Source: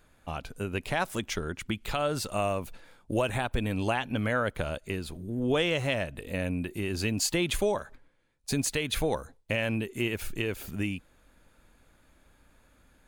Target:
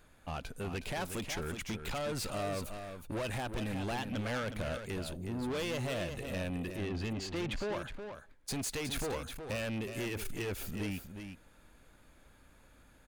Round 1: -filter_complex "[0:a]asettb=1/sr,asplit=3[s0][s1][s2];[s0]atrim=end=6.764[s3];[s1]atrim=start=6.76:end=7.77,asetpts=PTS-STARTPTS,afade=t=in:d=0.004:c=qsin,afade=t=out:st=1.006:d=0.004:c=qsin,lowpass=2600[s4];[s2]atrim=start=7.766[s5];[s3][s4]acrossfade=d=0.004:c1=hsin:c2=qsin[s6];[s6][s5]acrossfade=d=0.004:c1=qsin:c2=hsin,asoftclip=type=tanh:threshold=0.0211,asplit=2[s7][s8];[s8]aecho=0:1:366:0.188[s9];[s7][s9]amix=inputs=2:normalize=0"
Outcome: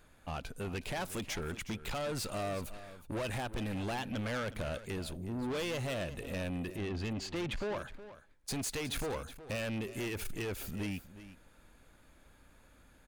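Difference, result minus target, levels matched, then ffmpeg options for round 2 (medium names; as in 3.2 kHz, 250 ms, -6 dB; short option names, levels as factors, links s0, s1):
echo-to-direct -6.5 dB
-filter_complex "[0:a]asettb=1/sr,asplit=3[s0][s1][s2];[s0]atrim=end=6.764[s3];[s1]atrim=start=6.76:end=7.77,asetpts=PTS-STARTPTS,afade=t=in:d=0.004:c=qsin,afade=t=out:st=1.006:d=0.004:c=qsin,lowpass=2600[s4];[s2]atrim=start=7.766[s5];[s3][s4]acrossfade=d=0.004:c1=hsin:c2=qsin[s6];[s6][s5]acrossfade=d=0.004:c1=qsin:c2=hsin,asoftclip=type=tanh:threshold=0.0211,asplit=2[s7][s8];[s8]aecho=0:1:366:0.398[s9];[s7][s9]amix=inputs=2:normalize=0"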